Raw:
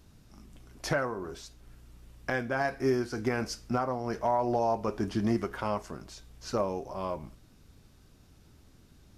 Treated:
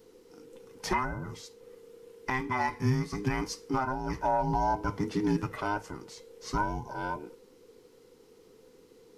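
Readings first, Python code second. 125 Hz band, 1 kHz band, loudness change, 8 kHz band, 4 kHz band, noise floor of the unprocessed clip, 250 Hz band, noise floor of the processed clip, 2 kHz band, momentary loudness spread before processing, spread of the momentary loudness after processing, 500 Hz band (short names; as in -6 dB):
+3.5 dB, +2.5 dB, 0.0 dB, 0.0 dB, 0.0 dB, -59 dBFS, 0.0 dB, -58 dBFS, +0.5 dB, 15 LU, 16 LU, -5.0 dB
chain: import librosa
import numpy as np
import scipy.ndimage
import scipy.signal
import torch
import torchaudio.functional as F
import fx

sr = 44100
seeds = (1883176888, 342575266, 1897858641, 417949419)

y = fx.band_invert(x, sr, width_hz=500)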